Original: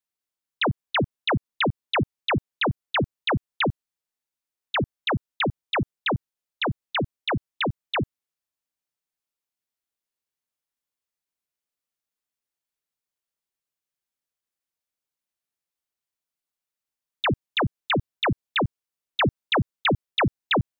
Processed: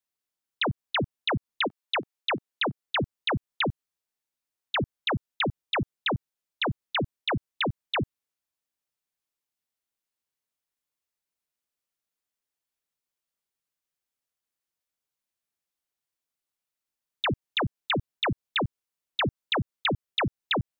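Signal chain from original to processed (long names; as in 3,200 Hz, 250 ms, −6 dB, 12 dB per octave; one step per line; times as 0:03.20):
0:01.67–0:02.84: high-pass filter 600 Hz → 160 Hz 12 dB per octave
downward compressor, threshold −24 dBFS, peak gain reduction 5.5 dB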